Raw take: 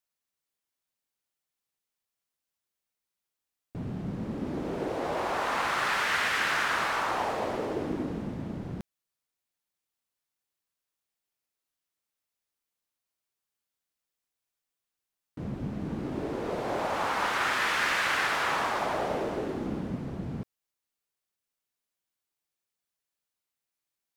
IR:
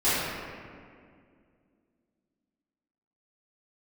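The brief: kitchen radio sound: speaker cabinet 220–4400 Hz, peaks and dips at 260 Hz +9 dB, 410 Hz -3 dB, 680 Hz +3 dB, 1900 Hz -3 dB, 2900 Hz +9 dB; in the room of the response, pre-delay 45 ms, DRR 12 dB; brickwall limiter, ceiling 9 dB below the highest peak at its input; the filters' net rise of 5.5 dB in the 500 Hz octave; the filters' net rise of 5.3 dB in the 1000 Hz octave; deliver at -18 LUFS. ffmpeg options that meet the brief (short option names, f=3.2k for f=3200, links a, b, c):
-filter_complex "[0:a]equalizer=f=500:t=o:g=5,equalizer=f=1k:t=o:g=4.5,alimiter=limit=-20.5dB:level=0:latency=1,asplit=2[a][b];[1:a]atrim=start_sample=2205,adelay=45[c];[b][c]afir=irnorm=-1:irlink=0,volume=-28dB[d];[a][d]amix=inputs=2:normalize=0,highpass=220,equalizer=f=260:t=q:w=4:g=9,equalizer=f=410:t=q:w=4:g=-3,equalizer=f=680:t=q:w=4:g=3,equalizer=f=1.9k:t=q:w=4:g=-3,equalizer=f=2.9k:t=q:w=4:g=9,lowpass=f=4.4k:w=0.5412,lowpass=f=4.4k:w=1.3066,volume=11dB"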